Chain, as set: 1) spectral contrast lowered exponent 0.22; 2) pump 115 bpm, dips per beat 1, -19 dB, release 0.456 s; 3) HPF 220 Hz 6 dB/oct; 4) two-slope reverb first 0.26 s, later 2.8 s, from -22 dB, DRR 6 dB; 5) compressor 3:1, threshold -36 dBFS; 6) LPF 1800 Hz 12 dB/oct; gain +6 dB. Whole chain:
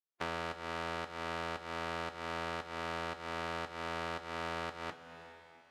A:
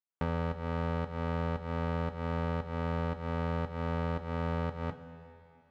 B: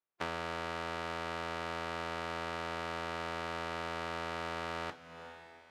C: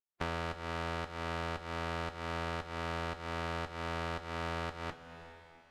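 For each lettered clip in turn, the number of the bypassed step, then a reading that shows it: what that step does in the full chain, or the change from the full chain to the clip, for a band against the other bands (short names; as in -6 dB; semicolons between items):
1, 125 Hz band +15.5 dB; 2, momentary loudness spread change -2 LU; 3, 125 Hz band +7.5 dB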